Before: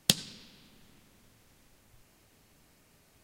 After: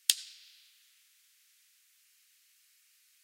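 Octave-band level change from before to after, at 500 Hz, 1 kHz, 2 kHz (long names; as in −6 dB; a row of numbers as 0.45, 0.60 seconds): below −40 dB, −19.5 dB, −3.5 dB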